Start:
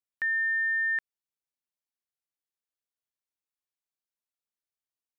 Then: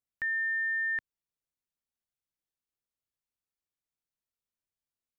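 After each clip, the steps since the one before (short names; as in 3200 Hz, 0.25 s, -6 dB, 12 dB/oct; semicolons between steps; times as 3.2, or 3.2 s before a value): low shelf 250 Hz +11.5 dB; gain -3.5 dB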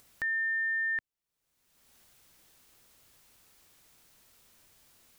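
upward compressor, threshold -39 dBFS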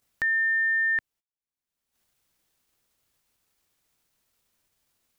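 gate -60 dBFS, range -25 dB; gain +6.5 dB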